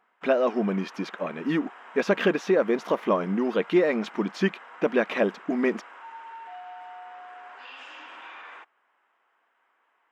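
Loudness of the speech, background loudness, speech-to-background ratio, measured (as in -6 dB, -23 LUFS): -26.0 LUFS, -44.5 LUFS, 18.5 dB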